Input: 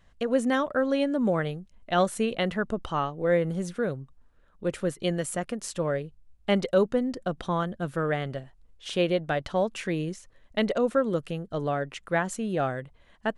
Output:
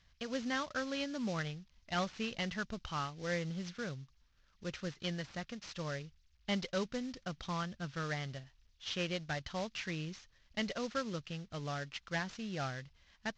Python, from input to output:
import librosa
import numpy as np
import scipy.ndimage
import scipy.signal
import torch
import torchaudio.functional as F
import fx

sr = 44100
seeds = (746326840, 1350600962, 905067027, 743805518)

y = fx.cvsd(x, sr, bps=32000)
y = fx.highpass(y, sr, hz=42.0, slope=6)
y = fx.peak_eq(y, sr, hz=450.0, db=-14.5, octaves=2.8)
y = y * librosa.db_to_amplitude(-1.5)